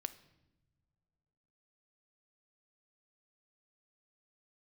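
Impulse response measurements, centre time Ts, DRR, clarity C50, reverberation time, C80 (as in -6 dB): 5 ms, 12.5 dB, 15.5 dB, no single decay rate, 18.5 dB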